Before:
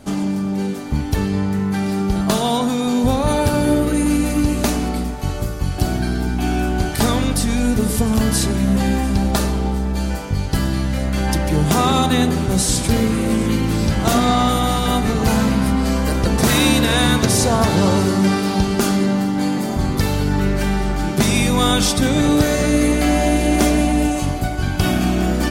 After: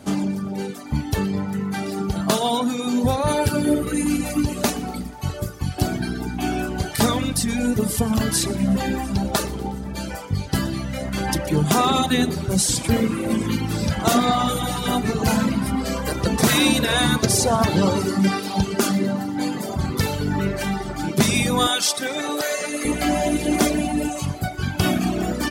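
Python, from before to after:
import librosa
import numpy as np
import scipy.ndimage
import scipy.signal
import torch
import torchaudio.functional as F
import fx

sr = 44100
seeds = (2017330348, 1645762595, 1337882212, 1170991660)

y = fx.dereverb_blind(x, sr, rt60_s=1.8)
y = fx.highpass(y, sr, hz=fx.steps((0.0, 79.0), (21.67, 530.0), (22.85, 85.0)), slope=12)
y = fx.echo_thinned(y, sr, ms=121, feedback_pct=60, hz=420.0, wet_db=-20.0)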